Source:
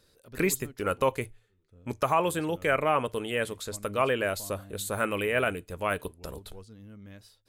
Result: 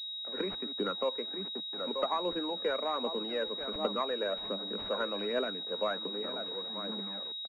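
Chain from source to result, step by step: tracing distortion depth 0.05 ms; outdoor echo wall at 160 m, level -14 dB; bit-crush 8-bit; compressor 3:1, threshold -37 dBFS, peak gain reduction 13.5 dB; steep high-pass 190 Hz 96 dB/oct; tilt -3.5 dB/oct; on a send at -23.5 dB: reverb RT60 0.45 s, pre-delay 3 ms; on the sum: phaser 1.3 Hz, delay 2.2 ms, feedback 44%; low shelf 450 Hz -12 dB; pulse-width modulation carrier 3800 Hz; gain +5.5 dB

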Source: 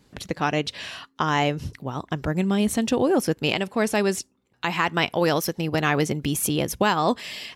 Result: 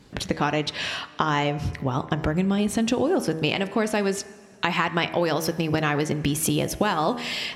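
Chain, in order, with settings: high shelf 10000 Hz -10.5 dB; de-hum 80.01 Hz, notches 31; compressor 4:1, threshold -28 dBFS, peak gain reduction 10.5 dB; plate-style reverb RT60 2.5 s, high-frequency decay 0.8×, DRR 18 dB; gain +7.5 dB

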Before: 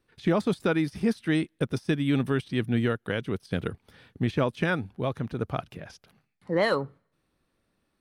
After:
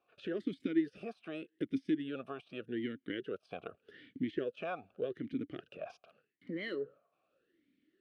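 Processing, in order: compressor 2.5:1, threshold -36 dBFS, peak gain reduction 11.5 dB; vowel sweep a-i 0.84 Hz; gain +10 dB

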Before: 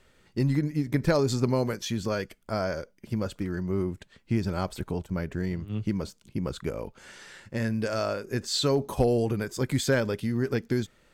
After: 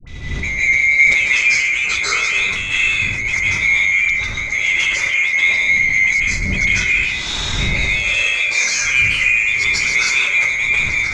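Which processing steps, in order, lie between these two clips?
band-swap scrambler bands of 2000 Hz; wind noise 81 Hz -40 dBFS; high shelf 2300 Hz +11 dB; compressor 12:1, threshold -30 dBFS, peak gain reduction 18 dB; low shelf 300 Hz -6.5 dB; sample leveller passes 3; LPF 6400 Hz 24 dB/oct; notch 790 Hz, Q 16; dispersion highs, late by 74 ms, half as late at 780 Hz; reverb RT60 1.2 s, pre-delay 0.137 s, DRR -9.5 dB; sustainer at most 38 dB/s; gain +1.5 dB

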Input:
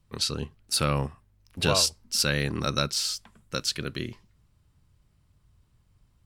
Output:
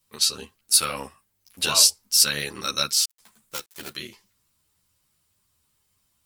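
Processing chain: 3.04–3.94 switching dead time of 0.2 ms; RIAA curve recording; ensemble effect; gain +1.5 dB

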